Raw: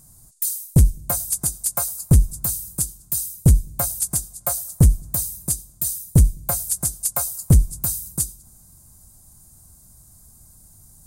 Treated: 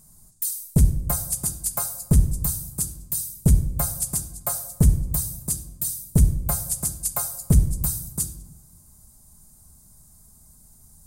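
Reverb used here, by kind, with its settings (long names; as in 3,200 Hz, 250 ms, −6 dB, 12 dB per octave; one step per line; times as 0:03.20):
rectangular room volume 3,400 cubic metres, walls furnished, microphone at 1.4 metres
level −3.5 dB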